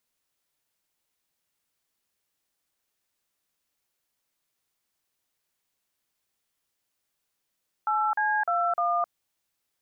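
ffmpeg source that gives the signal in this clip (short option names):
-f lavfi -i "aevalsrc='0.0562*clip(min(mod(t,0.303),0.262-mod(t,0.303))/0.002,0,1)*(eq(floor(t/0.303),0)*(sin(2*PI*852*mod(t,0.303))+sin(2*PI*1336*mod(t,0.303)))+eq(floor(t/0.303),1)*(sin(2*PI*852*mod(t,0.303))+sin(2*PI*1633*mod(t,0.303)))+eq(floor(t/0.303),2)*(sin(2*PI*697*mod(t,0.303))+sin(2*PI*1336*mod(t,0.303)))+eq(floor(t/0.303),3)*(sin(2*PI*697*mod(t,0.303))+sin(2*PI*1209*mod(t,0.303))))':d=1.212:s=44100"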